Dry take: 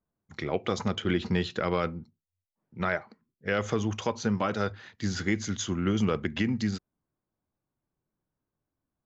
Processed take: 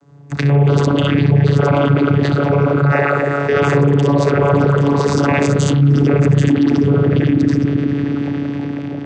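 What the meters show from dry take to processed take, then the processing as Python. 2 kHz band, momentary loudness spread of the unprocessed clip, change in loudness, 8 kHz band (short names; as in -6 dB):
+12.5 dB, 7 LU, +15.5 dB, n/a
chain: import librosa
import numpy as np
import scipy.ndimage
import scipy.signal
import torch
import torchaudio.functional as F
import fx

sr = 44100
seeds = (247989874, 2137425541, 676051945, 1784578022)

p1 = x + fx.echo_multitap(x, sr, ms=(58, 65, 785, 871), db=(-9.0, -3.0, -3.5, -5.5), dry=0)
p2 = fx.rev_spring(p1, sr, rt60_s=3.7, pass_ms=(35, 56), chirp_ms=75, drr_db=-4.0)
p3 = fx.leveller(p2, sr, passes=2)
p4 = fx.vocoder(p3, sr, bands=16, carrier='saw', carrier_hz=142.0)
p5 = fx.dynamic_eq(p4, sr, hz=130.0, q=3.1, threshold_db=-30.0, ratio=4.0, max_db=5)
p6 = fx.dereverb_blind(p5, sr, rt60_s=2.0)
p7 = fx.bass_treble(p6, sr, bass_db=-1, treble_db=5)
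y = fx.env_flatten(p7, sr, amount_pct=70)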